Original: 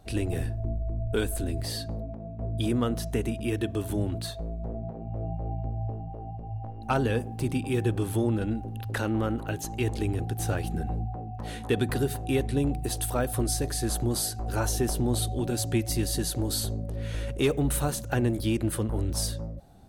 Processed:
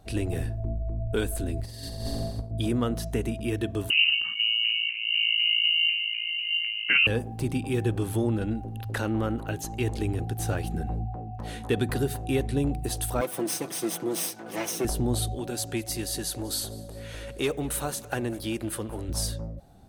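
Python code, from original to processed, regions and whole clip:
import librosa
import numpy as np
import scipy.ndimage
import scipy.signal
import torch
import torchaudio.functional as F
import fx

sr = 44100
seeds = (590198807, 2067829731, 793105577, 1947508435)

y = fx.chain(x, sr, fx.room_flutter(wall_m=7.5, rt60_s=1.4),
    fx.over_compress(threshold_db=-35.0, ratio=-0.5),
    fx.low_shelf(hz=86.0, db=9.0), at=(1.6, 2.51))
y = fx.chain(y, sr, fx.low_shelf(hz=290.0, db=7.5),
    fx.freq_invert(carrier_hz=2900), at=(3.9, 7.07))
y = fx.chain(y, sr, fx.lower_of_two(delay_ms=0.33),
    fx.highpass(hz=190.0, slope=24),
    fx.comb(ms=6.0, depth=0.54), at=(13.21, 14.85))
y = fx.chain(y, sr, fx.low_shelf(hz=240.0, db=-10.5),
    fx.echo_feedback(ms=197, feedback_pct=56, wet_db=-20.5), at=(15.35, 19.09))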